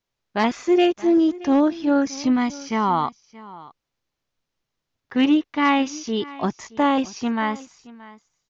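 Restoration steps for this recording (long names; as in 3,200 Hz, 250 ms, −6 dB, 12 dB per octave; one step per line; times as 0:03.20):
echo removal 625 ms −19.5 dB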